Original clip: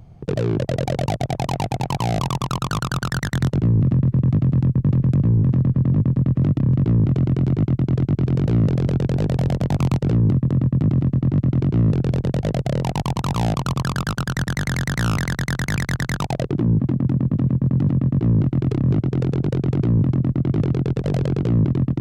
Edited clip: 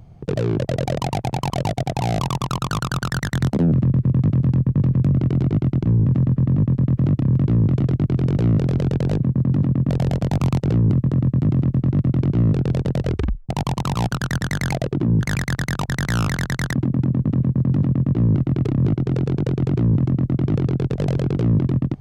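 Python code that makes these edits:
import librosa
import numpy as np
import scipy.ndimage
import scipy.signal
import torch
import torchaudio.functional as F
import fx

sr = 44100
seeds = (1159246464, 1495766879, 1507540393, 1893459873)

y = fx.edit(x, sr, fx.move(start_s=0.97, length_s=0.47, to_s=2.01),
    fx.speed_span(start_s=3.53, length_s=0.28, speed=1.47),
    fx.move(start_s=7.19, length_s=0.71, to_s=5.22),
    fx.tape_stop(start_s=12.39, length_s=0.49),
    fx.cut(start_s=13.46, length_s=0.67),
    fx.swap(start_s=14.78, length_s=0.84, other_s=16.3, other_length_s=0.49),
    fx.duplicate(start_s=17.46, length_s=0.7, to_s=9.29), tone=tone)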